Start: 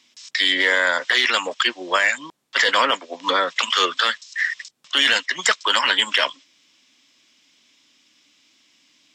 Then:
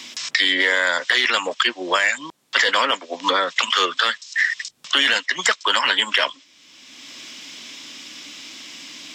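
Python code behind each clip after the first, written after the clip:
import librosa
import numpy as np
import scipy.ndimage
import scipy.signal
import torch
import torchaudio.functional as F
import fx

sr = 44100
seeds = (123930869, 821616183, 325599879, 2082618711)

y = fx.band_squash(x, sr, depth_pct=70)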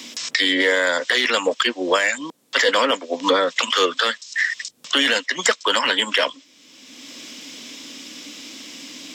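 y = fx.high_shelf(x, sr, hz=7200.0, db=9.0)
y = fx.small_body(y, sr, hz=(260.0, 470.0), ring_ms=20, db=10)
y = F.gain(torch.from_numpy(y), -2.5).numpy()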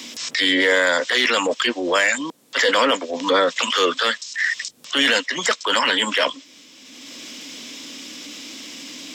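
y = fx.transient(x, sr, attack_db=-7, sustain_db=4)
y = F.gain(torch.from_numpy(y), 1.5).numpy()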